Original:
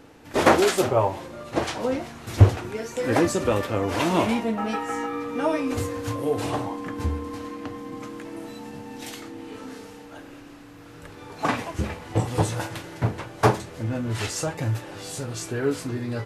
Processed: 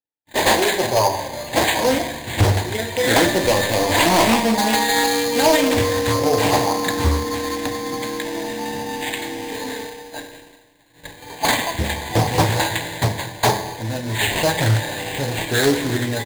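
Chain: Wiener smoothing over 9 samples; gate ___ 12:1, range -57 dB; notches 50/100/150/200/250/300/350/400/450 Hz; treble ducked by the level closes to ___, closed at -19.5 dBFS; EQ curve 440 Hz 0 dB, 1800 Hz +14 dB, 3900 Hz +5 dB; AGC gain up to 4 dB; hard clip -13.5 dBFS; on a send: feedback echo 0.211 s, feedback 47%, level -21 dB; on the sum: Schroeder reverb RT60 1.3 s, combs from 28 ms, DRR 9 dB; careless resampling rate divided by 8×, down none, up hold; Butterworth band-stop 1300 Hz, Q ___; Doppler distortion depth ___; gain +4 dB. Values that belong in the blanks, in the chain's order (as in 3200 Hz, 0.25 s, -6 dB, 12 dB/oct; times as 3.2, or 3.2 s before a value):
-41 dBFS, 2400 Hz, 2, 0.4 ms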